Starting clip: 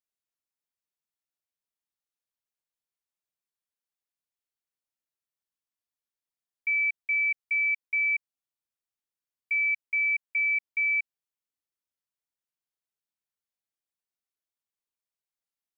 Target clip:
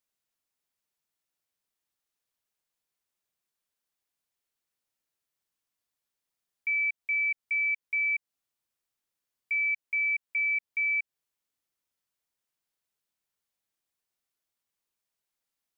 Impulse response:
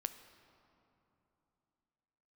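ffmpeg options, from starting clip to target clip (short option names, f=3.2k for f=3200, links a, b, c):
-af "alimiter=level_in=6dB:limit=-24dB:level=0:latency=1:release=182,volume=-6dB,volume=6dB"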